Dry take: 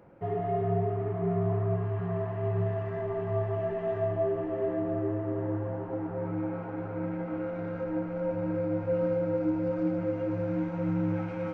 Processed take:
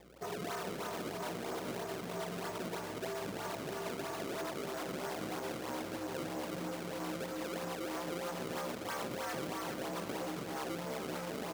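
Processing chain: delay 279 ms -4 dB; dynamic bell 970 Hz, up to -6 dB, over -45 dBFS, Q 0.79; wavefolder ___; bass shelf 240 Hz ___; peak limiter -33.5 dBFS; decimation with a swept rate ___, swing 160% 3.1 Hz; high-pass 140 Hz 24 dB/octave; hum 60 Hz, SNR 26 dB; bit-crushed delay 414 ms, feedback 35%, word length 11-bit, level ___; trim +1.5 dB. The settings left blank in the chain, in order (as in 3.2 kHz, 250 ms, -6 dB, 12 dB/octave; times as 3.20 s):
-31.5 dBFS, -11.5 dB, 29×, -8 dB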